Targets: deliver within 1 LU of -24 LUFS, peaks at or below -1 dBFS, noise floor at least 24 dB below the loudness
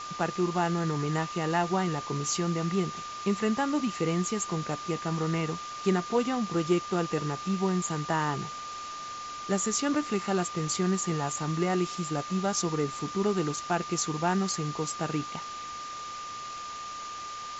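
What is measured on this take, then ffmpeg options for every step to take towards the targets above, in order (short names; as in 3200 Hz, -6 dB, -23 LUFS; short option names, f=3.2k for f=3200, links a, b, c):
steady tone 1200 Hz; tone level -37 dBFS; noise floor -39 dBFS; noise floor target -54 dBFS; loudness -30.0 LUFS; peak -14.0 dBFS; loudness target -24.0 LUFS
-> -af "bandreject=f=1.2k:w=30"
-af "afftdn=nr=15:nf=-39"
-af "volume=6dB"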